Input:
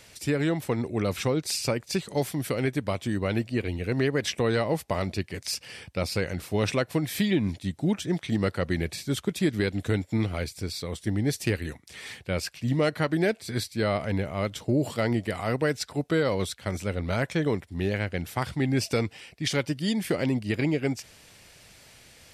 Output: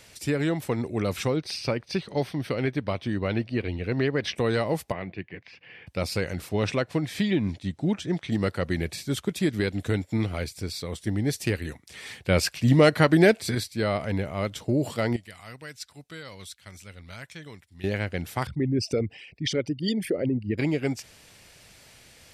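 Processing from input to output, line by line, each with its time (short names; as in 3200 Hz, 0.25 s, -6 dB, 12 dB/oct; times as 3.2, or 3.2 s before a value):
1.36–4.36 polynomial smoothing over 15 samples
4.92–5.87 speaker cabinet 160–2500 Hz, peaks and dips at 240 Hz -10 dB, 400 Hz -5 dB, 590 Hz -8 dB, 900 Hz -6 dB, 1300 Hz -9 dB
6.49–8.32 air absorption 57 m
12.25–13.55 gain +7 dB
15.16–17.84 passive tone stack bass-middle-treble 5-5-5
18.47–20.58 formant sharpening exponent 2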